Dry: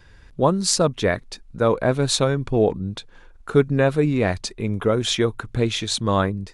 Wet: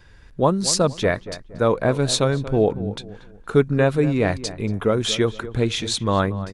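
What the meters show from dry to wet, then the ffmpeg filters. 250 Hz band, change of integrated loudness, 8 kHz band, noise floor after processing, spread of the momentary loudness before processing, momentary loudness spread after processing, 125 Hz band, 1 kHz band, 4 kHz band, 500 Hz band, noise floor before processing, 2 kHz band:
+0.5 dB, 0.0 dB, 0.0 dB, -46 dBFS, 10 LU, 10 LU, +0.5 dB, 0.0 dB, 0.0 dB, 0.0 dB, -48 dBFS, 0.0 dB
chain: -filter_complex "[0:a]asplit=2[a][b];[b]adelay=233,lowpass=f=1.7k:p=1,volume=-14dB,asplit=2[c][d];[d]adelay=233,lowpass=f=1.7k:p=1,volume=0.34,asplit=2[e][f];[f]adelay=233,lowpass=f=1.7k:p=1,volume=0.34[g];[a][c][e][g]amix=inputs=4:normalize=0"

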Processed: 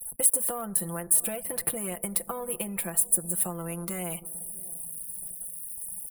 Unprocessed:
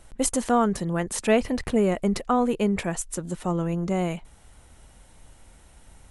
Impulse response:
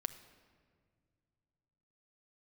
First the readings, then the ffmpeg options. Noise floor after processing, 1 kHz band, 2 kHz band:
-45 dBFS, -12.0 dB, -8.5 dB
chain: -filter_complex "[0:a]acompressor=threshold=-25dB:ratio=6,aecho=1:1:5.9:0.73,asplit=2[a][b];[1:a]atrim=start_sample=2205,highshelf=f=3.6k:g=6[c];[b][c]afir=irnorm=-1:irlink=0,volume=-5dB[d];[a][d]amix=inputs=2:normalize=0,acrossover=split=91|710[e][f][g];[e]acompressor=threshold=-42dB:ratio=4[h];[f]acompressor=threshold=-33dB:ratio=4[i];[g]acompressor=threshold=-36dB:ratio=4[j];[h][i][j]amix=inputs=3:normalize=0,aeval=exprs='sgn(val(0))*max(abs(val(0))-0.00422,0)':c=same,lowshelf=f=80:g=-10.5,asplit=2[k][l];[l]adelay=641,lowpass=f=1.2k:p=1,volume=-19.5dB,asplit=2[m][n];[n]adelay=641,lowpass=f=1.2k:p=1,volume=0.48,asplit=2[o][p];[p]adelay=641,lowpass=f=1.2k:p=1,volume=0.48,asplit=2[q][r];[r]adelay=641,lowpass=f=1.2k:p=1,volume=0.48[s];[k][m][o][q][s]amix=inputs=5:normalize=0,aexciter=amount=10.9:drive=9.9:freq=9.7k,afftdn=nr=29:nf=-50,equalizer=f=300:t=o:w=0.26:g=-7,volume=-1.5dB"

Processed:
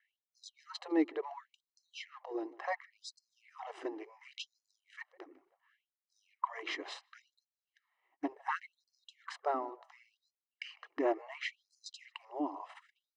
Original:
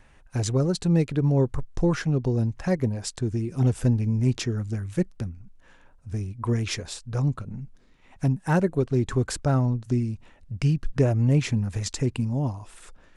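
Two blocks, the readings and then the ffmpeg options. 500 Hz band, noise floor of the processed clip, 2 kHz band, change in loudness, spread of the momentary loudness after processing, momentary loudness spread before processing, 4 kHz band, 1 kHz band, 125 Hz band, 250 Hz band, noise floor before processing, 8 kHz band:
-12.0 dB, under -85 dBFS, -6.5 dB, -14.5 dB, 19 LU, 11 LU, -9.5 dB, -3.5 dB, under -40 dB, -15.5 dB, -55 dBFS, -21.5 dB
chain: -filter_complex "[0:a]acrossover=split=130|3000[a][b][c];[a]acompressor=threshold=-24dB:ratio=6[d];[d][b][c]amix=inputs=3:normalize=0,lowpass=6.6k,agate=range=-24dB:threshold=-45dB:ratio=16:detection=peak,aemphasis=mode=reproduction:type=bsi,bandreject=f=900:w=18,afftfilt=real='re*lt(hypot(re,im),1.26)':imag='im*lt(hypot(re,im),1.26)':win_size=1024:overlap=0.75,bass=f=250:g=1,treble=f=4k:g=-13,aecho=1:1:1:0.67,asplit=2[e][f];[f]adelay=153,lowpass=f=1.9k:p=1,volume=-22dB,asplit=2[g][h];[h]adelay=153,lowpass=f=1.9k:p=1,volume=0.27[i];[e][g][i]amix=inputs=3:normalize=0,areverse,acompressor=threshold=-34dB:ratio=6,areverse,afftfilt=real='re*gte(b*sr/1024,280*pow(4200/280,0.5+0.5*sin(2*PI*0.7*pts/sr)))':imag='im*gte(b*sr/1024,280*pow(4200/280,0.5+0.5*sin(2*PI*0.7*pts/sr)))':win_size=1024:overlap=0.75,volume=11.5dB"

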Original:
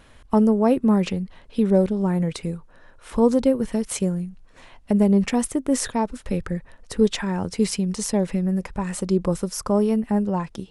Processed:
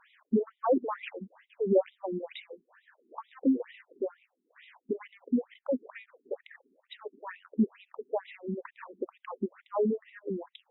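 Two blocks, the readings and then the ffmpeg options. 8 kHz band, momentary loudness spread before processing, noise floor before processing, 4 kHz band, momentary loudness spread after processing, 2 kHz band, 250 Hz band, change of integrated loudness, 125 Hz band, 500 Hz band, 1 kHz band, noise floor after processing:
under -40 dB, 12 LU, -51 dBFS, -17.0 dB, 19 LU, -10.0 dB, -13.0 dB, -10.5 dB, under -15 dB, -8.5 dB, -10.0 dB, -81 dBFS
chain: -af "afftfilt=real='re*between(b*sr/1024,280*pow(2800/280,0.5+0.5*sin(2*PI*2.2*pts/sr))/1.41,280*pow(2800/280,0.5+0.5*sin(2*PI*2.2*pts/sr))*1.41)':imag='im*between(b*sr/1024,280*pow(2800/280,0.5+0.5*sin(2*PI*2.2*pts/sr))/1.41,280*pow(2800/280,0.5+0.5*sin(2*PI*2.2*pts/sr))*1.41)':win_size=1024:overlap=0.75,volume=-2dB"

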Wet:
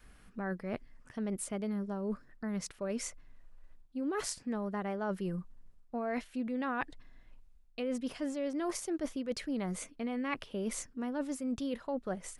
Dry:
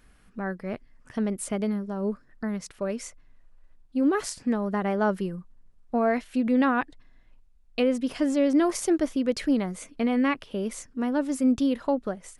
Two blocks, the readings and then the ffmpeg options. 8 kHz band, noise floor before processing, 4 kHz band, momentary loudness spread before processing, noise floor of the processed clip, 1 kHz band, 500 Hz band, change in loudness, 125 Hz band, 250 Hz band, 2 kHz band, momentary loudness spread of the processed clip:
-4.0 dB, -57 dBFS, -7.0 dB, 12 LU, -60 dBFS, -10.0 dB, -10.0 dB, -10.5 dB, -6.0 dB, -11.0 dB, -9.0 dB, 6 LU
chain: -af "adynamicequalizer=threshold=0.0178:dfrequency=270:dqfactor=2.7:tfrequency=270:tqfactor=2.7:attack=5:release=100:ratio=0.375:range=3:mode=cutabove:tftype=bell,areverse,acompressor=threshold=-33dB:ratio=6,areverse"

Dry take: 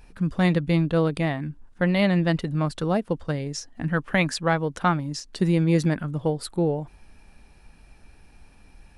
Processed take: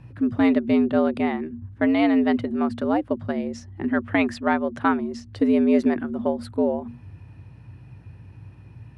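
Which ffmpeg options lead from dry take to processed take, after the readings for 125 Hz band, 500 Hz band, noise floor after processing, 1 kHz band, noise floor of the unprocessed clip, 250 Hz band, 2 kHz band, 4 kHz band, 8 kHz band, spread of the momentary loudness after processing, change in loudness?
-13.0 dB, +2.0 dB, -47 dBFS, +1.5 dB, -53 dBFS, +4.0 dB, -0.5 dB, -5.5 dB, under -10 dB, 10 LU, +1.5 dB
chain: -af "bandreject=f=50:t=h:w=6,bandreject=f=100:t=h:w=6,bandreject=f=150:t=h:w=6,afreqshift=87,bass=f=250:g=6,treble=f=4k:g=-14,aeval=exprs='val(0)+0.00251*(sin(2*PI*60*n/s)+sin(2*PI*2*60*n/s)/2+sin(2*PI*3*60*n/s)/3+sin(2*PI*4*60*n/s)/4+sin(2*PI*5*60*n/s)/5)':c=same"

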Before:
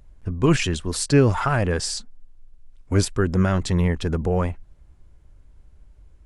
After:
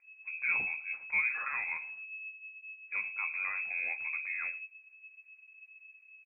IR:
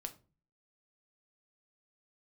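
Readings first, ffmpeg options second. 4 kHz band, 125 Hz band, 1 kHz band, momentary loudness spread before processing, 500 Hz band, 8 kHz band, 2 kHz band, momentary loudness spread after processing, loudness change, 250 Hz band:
under -40 dB, under -40 dB, -16.5 dB, 10 LU, -37.0 dB, under -40 dB, +0.5 dB, 22 LU, -11.5 dB, under -40 dB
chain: -filter_complex "[1:a]atrim=start_sample=2205,asetrate=79380,aresample=44100[a];[0:a][a]afir=irnorm=-1:irlink=0,lowpass=f=2.2k:t=q:w=0.5098,lowpass=f=2.2k:t=q:w=0.6013,lowpass=f=2.2k:t=q:w=0.9,lowpass=f=2.2k:t=q:w=2.563,afreqshift=-2600,aecho=1:1:112:0.0794,volume=-7.5dB"

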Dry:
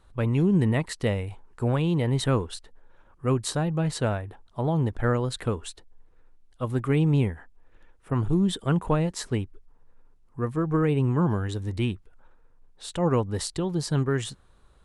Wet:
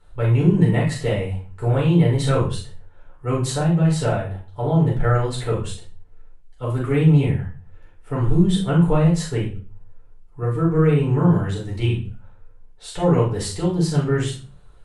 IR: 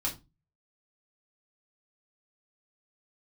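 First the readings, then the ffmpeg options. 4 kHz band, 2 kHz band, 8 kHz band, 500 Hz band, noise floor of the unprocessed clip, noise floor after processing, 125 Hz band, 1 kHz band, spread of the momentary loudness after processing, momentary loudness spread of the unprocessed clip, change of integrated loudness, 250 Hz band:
+3.5 dB, +4.0 dB, +3.0 dB, +5.5 dB, -58 dBFS, -46 dBFS, +7.0 dB, +4.5 dB, 13 LU, 12 LU, +6.0 dB, +6.0 dB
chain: -filter_complex "[1:a]atrim=start_sample=2205,asetrate=25137,aresample=44100[a];[0:a][a]afir=irnorm=-1:irlink=0,volume=-4.5dB"

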